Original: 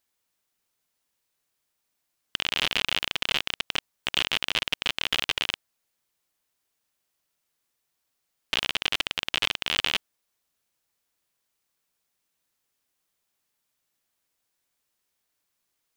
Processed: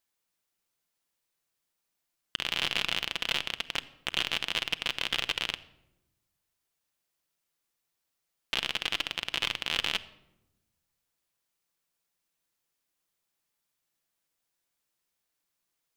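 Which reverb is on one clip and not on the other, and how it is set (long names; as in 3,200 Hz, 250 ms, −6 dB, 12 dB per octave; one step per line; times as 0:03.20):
rectangular room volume 3,700 cubic metres, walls furnished, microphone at 0.77 metres
level −4 dB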